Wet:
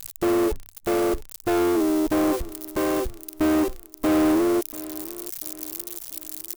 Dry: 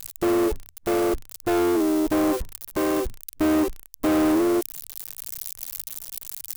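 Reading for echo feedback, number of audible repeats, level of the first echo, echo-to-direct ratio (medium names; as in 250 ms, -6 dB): 45%, 3, -18.5 dB, -17.5 dB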